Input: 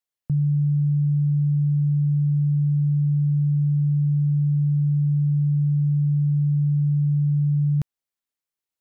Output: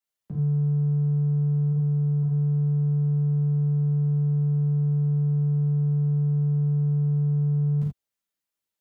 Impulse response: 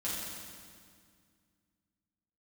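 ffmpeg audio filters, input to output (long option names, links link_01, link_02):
-filter_complex "[0:a]asplit=3[link_01][link_02][link_03];[link_01]afade=type=out:start_time=1.71:duration=0.02[link_04];[link_02]highpass=84,afade=type=in:start_time=1.71:duration=0.02,afade=type=out:start_time=2.22:duration=0.02[link_05];[link_03]afade=type=in:start_time=2.22:duration=0.02[link_06];[link_04][link_05][link_06]amix=inputs=3:normalize=0,acrossover=split=120|160[link_07][link_08][link_09];[link_07]asoftclip=type=tanh:threshold=-38.5dB[link_10];[link_09]alimiter=level_in=10dB:limit=-24dB:level=0:latency=1:release=31,volume=-10dB[link_11];[link_10][link_08][link_11]amix=inputs=3:normalize=0[link_12];[1:a]atrim=start_sample=2205,afade=type=out:start_time=0.14:duration=0.01,atrim=end_sample=6615[link_13];[link_12][link_13]afir=irnorm=-1:irlink=0"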